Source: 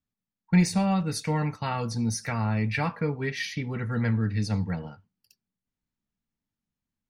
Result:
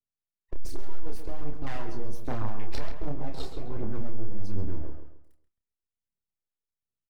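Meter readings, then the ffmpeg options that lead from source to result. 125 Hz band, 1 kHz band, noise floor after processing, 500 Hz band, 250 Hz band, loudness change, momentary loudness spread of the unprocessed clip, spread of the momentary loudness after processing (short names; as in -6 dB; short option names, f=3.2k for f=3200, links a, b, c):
-10.5 dB, -10.0 dB, under -85 dBFS, -6.5 dB, -13.0 dB, -11.5 dB, 8 LU, 9 LU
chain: -filter_complex "[0:a]afwtdn=0.0355,aeval=exprs='abs(val(0))':c=same,acrossover=split=170|3000[a][b][c];[b]acompressor=threshold=-35dB:ratio=6[d];[a][d][c]amix=inputs=3:normalize=0,aphaser=in_gain=1:out_gain=1:delay=2.8:decay=0.53:speed=1.3:type=triangular,asoftclip=type=tanh:threshold=-22dB,asplit=2[e][f];[f]adelay=29,volume=-5.5dB[g];[e][g]amix=inputs=2:normalize=0,asplit=2[h][i];[i]adelay=134,lowpass=f=2.7k:p=1,volume=-7dB,asplit=2[j][k];[k]adelay=134,lowpass=f=2.7k:p=1,volume=0.33,asplit=2[l][m];[m]adelay=134,lowpass=f=2.7k:p=1,volume=0.33,asplit=2[n][o];[o]adelay=134,lowpass=f=2.7k:p=1,volume=0.33[p];[h][j][l][n][p]amix=inputs=5:normalize=0,adynamicequalizer=threshold=0.00178:dfrequency=1600:dqfactor=0.7:tfrequency=1600:tqfactor=0.7:attack=5:release=100:ratio=0.375:range=2.5:mode=cutabove:tftype=highshelf,volume=1dB"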